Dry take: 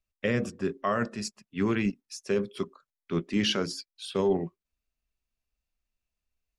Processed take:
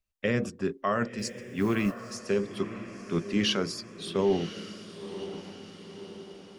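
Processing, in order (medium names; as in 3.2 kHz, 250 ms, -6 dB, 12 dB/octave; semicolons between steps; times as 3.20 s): echo that smears into a reverb 1003 ms, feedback 54%, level -12 dB; 1.18–2.15 s: modulation noise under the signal 30 dB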